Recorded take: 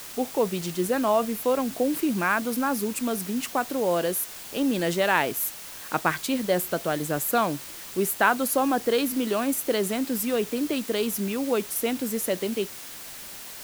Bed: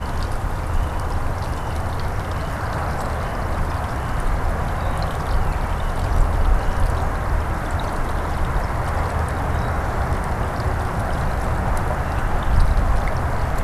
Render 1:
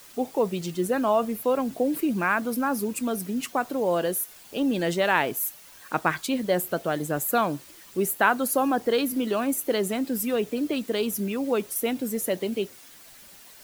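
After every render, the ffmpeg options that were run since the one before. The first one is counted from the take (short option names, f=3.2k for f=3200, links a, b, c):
-af "afftdn=nr=10:nf=-40"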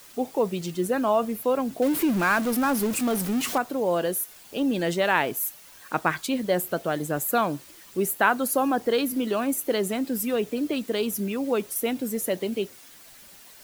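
-filter_complex "[0:a]asettb=1/sr,asplit=3[a][b][c];[a]atrim=end=1.824[d];[b]atrim=start=1.82:end=3.58,asetpts=PTS-STARTPTS,afade=t=in:d=0.004:c=qsin,afade=t=out:st=1.756:d=0.004:c=qsin,aeval=exprs='val(0)+0.5*0.0422*sgn(val(0))':c=same[e];[c]atrim=start=3.576[f];[d][e]acrossfade=d=0.004:c1=hsin:c2=qsin[g];[g][f]acrossfade=d=0.004:c1=qsin:c2=hsin"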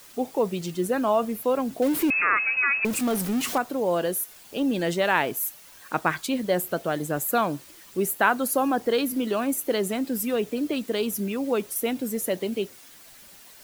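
-filter_complex "[0:a]asettb=1/sr,asplit=3[a][b][c];[a]atrim=end=2.104[d];[b]atrim=start=2.1:end=2.85,asetpts=PTS-STARTPTS,afade=t=in:d=0.004:c=qsin,afade=t=out:st=0.746:d=0.004:c=qsin,lowpass=f=2.4k:t=q:w=0.5098,lowpass=f=2.4k:t=q:w=0.6013,lowpass=f=2.4k:t=q:w=0.9,lowpass=f=2.4k:t=q:w=2.563,afreqshift=-2800[e];[c]atrim=start=2.846[f];[d][e]acrossfade=d=0.004:c1=hsin:c2=qsin[g];[g][f]acrossfade=d=0.004:c1=qsin:c2=hsin"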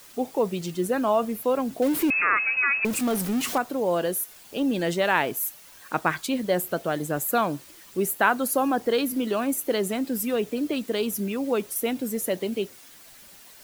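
-af anull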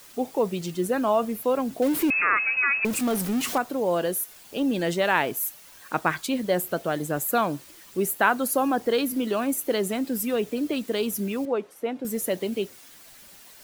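-filter_complex "[0:a]asettb=1/sr,asplit=3[a][b][c];[a]atrim=end=11.454[d];[b]atrim=start=11.45:end=12.05,asetpts=PTS-STARTPTS,afade=t=in:d=0.004:c=qsin,afade=t=out:st=0.596:d=0.004:c=qsin,bandpass=f=680:t=q:w=0.59[e];[c]atrim=start=12.046[f];[d][e]acrossfade=d=0.004:c1=hsin:c2=qsin[g];[g][f]acrossfade=d=0.004:c1=qsin:c2=hsin"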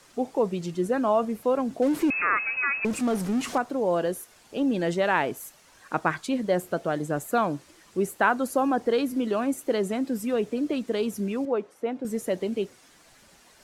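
-af "lowpass=6.9k,equalizer=f=3.5k:t=o:w=1.7:g=-5.5"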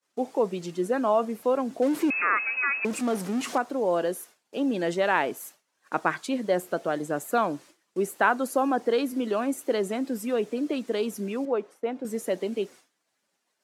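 -af "agate=range=-33dB:threshold=-42dB:ratio=3:detection=peak,highpass=220"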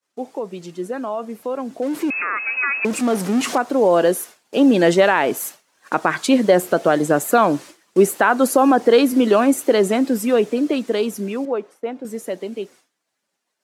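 -af "alimiter=limit=-17dB:level=0:latency=1:release=141,dynaudnorm=f=210:g=31:m=14.5dB"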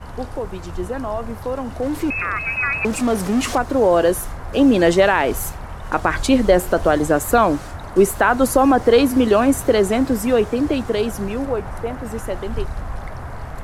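-filter_complex "[1:a]volume=-9.5dB[a];[0:a][a]amix=inputs=2:normalize=0"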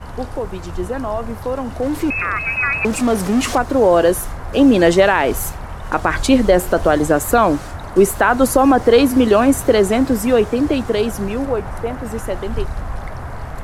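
-af "volume=2.5dB,alimiter=limit=-2dB:level=0:latency=1"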